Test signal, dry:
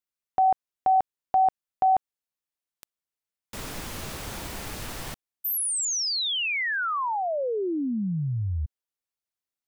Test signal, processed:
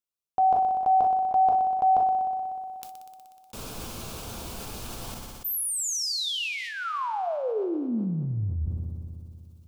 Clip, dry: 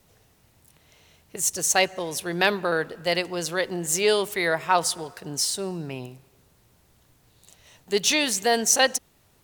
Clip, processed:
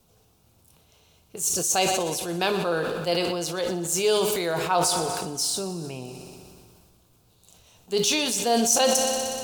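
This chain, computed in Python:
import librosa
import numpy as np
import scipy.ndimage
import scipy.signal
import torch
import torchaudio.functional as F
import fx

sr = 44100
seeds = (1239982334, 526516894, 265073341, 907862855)

y = fx.peak_eq(x, sr, hz=1900.0, db=-14.5, octaves=0.36)
y = fx.echo_heads(y, sr, ms=61, heads='first and second', feedback_pct=73, wet_db=-19.5)
y = fx.rev_gated(y, sr, seeds[0], gate_ms=90, shape='falling', drr_db=9.0)
y = fx.sustainer(y, sr, db_per_s=24.0)
y = y * librosa.db_to_amplitude(-2.5)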